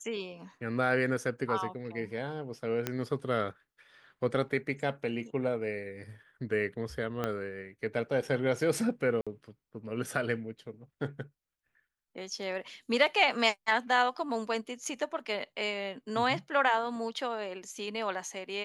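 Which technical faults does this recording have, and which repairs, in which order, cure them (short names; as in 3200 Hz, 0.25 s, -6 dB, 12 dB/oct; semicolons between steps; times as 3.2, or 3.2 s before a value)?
2.87 pop -15 dBFS
7.24 pop -18 dBFS
9.21–9.27 gap 56 ms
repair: de-click; interpolate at 9.21, 56 ms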